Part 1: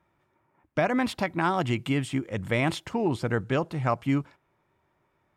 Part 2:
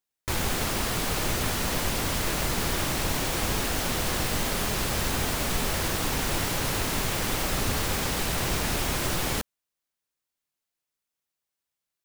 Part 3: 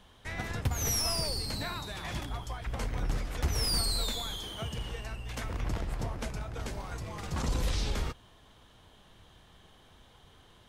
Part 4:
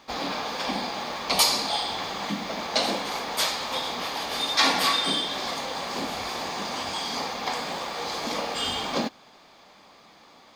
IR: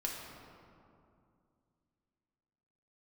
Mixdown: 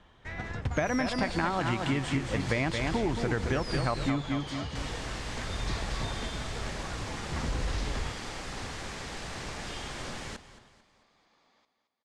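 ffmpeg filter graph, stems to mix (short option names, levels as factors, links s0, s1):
-filter_complex "[0:a]volume=1.26,asplit=2[s0][s1];[s1]volume=0.447[s2];[1:a]adelay=950,volume=0.251,asplit=3[s3][s4][s5];[s3]atrim=end=4.1,asetpts=PTS-STARTPTS,afade=t=out:st=4.096:d=0.004:c=hsin[s6];[s4]atrim=start=4.1:end=4.75,asetpts=PTS-STARTPTS,volume=0[s7];[s5]atrim=start=4.75,asetpts=PTS-STARTPTS,afade=t=in:d=0.004:c=hsin[s8];[s6][s7][s8]concat=n=3:v=0:a=1,asplit=2[s9][s10];[s10]volume=0.168[s11];[2:a]highshelf=f=3200:g=-8.5,volume=0.891[s12];[3:a]asoftclip=type=tanh:threshold=0.0891,adelay=1100,volume=0.15,asplit=2[s13][s14];[s14]volume=0.299[s15];[s2][s11][s15]amix=inputs=3:normalize=0,aecho=0:1:222|444|666|888|1110|1332:1|0.41|0.168|0.0689|0.0283|0.0116[s16];[s0][s9][s12][s13][s16]amix=inputs=5:normalize=0,lowpass=f=8100:w=0.5412,lowpass=f=8100:w=1.3066,equalizer=f=1800:w=2.6:g=3.5,acompressor=threshold=0.0562:ratio=6"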